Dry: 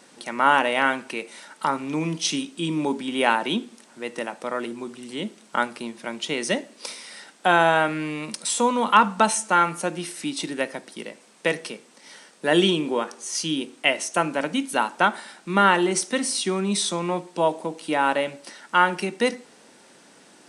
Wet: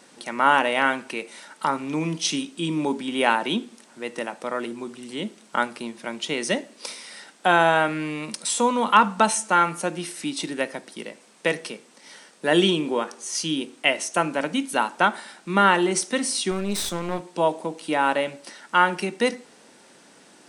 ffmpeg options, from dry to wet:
-filter_complex "[0:a]asettb=1/sr,asplit=3[a][b][c];[a]atrim=end=16.514[d];[b]atrim=start=16.51:end=17.33,asetpts=PTS-STARTPTS,afade=t=in:d=0.004:c=qsin,afade=t=out:st=0.816:d=0.004:c=qsin,aeval=exprs='clip(val(0),-1,0.0188)':c=same[e];[c]atrim=start=17.326[f];[d][e]acrossfade=d=0.004:c1=hsin:c2=qsin[g];[g][f]acrossfade=d=0.004:c1=qsin:c2=hsin"

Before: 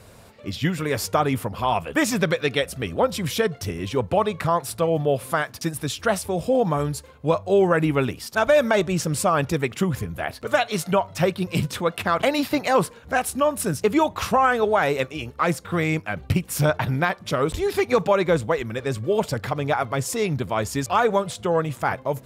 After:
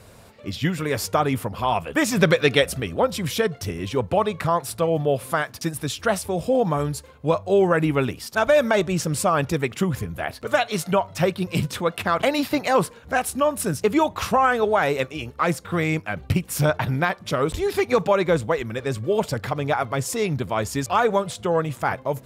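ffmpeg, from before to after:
-filter_complex "[0:a]asettb=1/sr,asplit=3[a][b][c];[a]atrim=end=2.174[d];[b]atrim=start=2.17:end=2.8,asetpts=PTS-STARTPTS,afade=t=in:d=0.004:c=qsin,afade=t=out:st=0.626:d=0.004:c=qsin,acontrast=26[e];[c]atrim=start=2.796[f];[d][e]acrossfade=d=0.004:c1=hsin:c2=qsin[g];[g][f]acrossfade=d=0.004:c1=qsin:c2=hsin"

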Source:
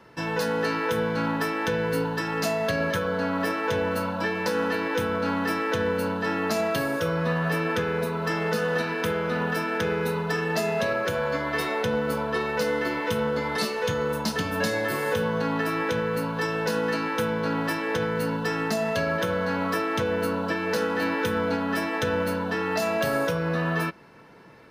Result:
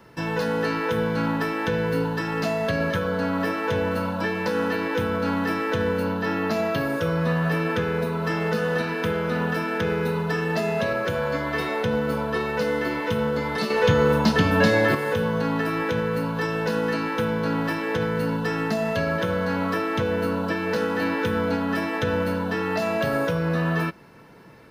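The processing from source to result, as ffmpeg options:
-filter_complex "[0:a]asettb=1/sr,asplit=3[a][b][c];[a]atrim=end=6.034[d];[b]atrim=start=6.03:end=6.9,asetpts=PTS-STARTPTS,afade=t=in:d=0.004:c=qsin,afade=t=out:st=0.866:d=0.004:c=qsin,equalizer=f=8.4k:t=o:w=0.45:g=-7.5[e];[c]atrim=start=6.896[f];[d][e]acrossfade=d=0.004:c1=hsin:c2=qsin[g];[g][f]acrossfade=d=0.004:c1=qsin:c2=hsin,asettb=1/sr,asplit=3[h][i][j];[h]atrim=end=13.704[k];[i]atrim=start=13.7:end=14.95,asetpts=PTS-STARTPTS,afade=t=in:d=0.004:c=qsin,afade=t=out:st=1.246:d=0.004:c=qsin,acontrast=64[l];[j]atrim=start=14.946[m];[k][l]acrossfade=d=0.004:c1=hsin:c2=qsin[n];[n][m]acrossfade=d=0.004:c1=qsin:c2=hsin,highshelf=f=9.4k:g=9.5,acrossover=split=4500[o][p];[p]acompressor=threshold=-47dB:ratio=4:attack=1:release=60[q];[o][q]amix=inputs=2:normalize=0,lowshelf=f=250:g=5.5"

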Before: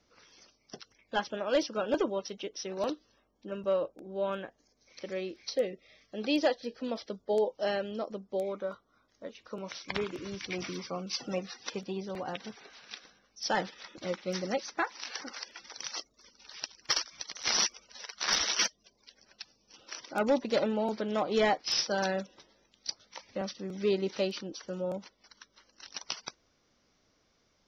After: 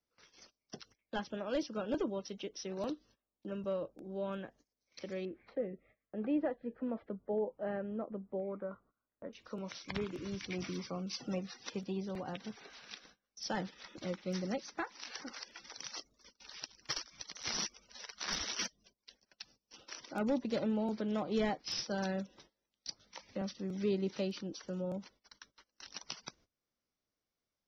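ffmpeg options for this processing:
-filter_complex "[0:a]asettb=1/sr,asplit=3[a][b][c];[a]atrim=end=5.254[d];[b]atrim=start=5.25:end=9.33,asetpts=PTS-STARTPTS,afade=t=in:d=0.004:c=qsin,afade=t=out:st=4.076:d=0.004:c=qsin,lowpass=f=1.9k:w=0.5412,lowpass=f=1.9k:w=1.3066[e];[c]atrim=start=9.326[f];[d][e]acrossfade=d=0.004:c1=hsin:c2=qsin[g];[g][f]acrossfade=d=0.004:c1=qsin:c2=hsin,agate=range=-22dB:threshold=-58dB:ratio=16:detection=peak,acrossover=split=270[h][i];[i]acompressor=threshold=-57dB:ratio=1.5[j];[h][j]amix=inputs=2:normalize=0,volume=1.5dB"

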